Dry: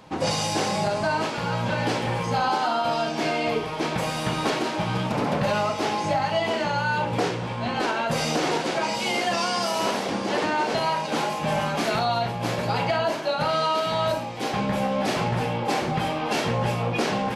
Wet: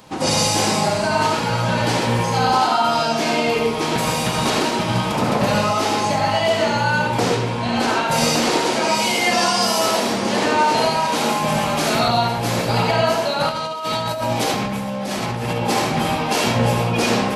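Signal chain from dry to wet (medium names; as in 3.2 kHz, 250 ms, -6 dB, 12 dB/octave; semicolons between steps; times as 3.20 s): treble shelf 5.6 kHz +11.5 dB; de-hum 82.35 Hz, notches 35; reverberation RT60 0.50 s, pre-delay 73 ms, DRR 0 dB; 13.49–15.63 s: compressor with a negative ratio -26 dBFS, ratio -1; trim +2.5 dB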